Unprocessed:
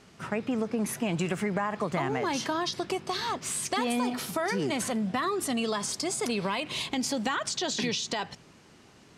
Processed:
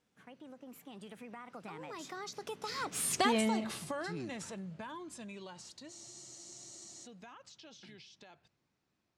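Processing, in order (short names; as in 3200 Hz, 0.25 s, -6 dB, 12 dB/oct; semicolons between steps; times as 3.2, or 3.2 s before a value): Doppler pass-by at 3.22, 51 m/s, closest 12 m; spectral freeze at 5.91, 1.13 s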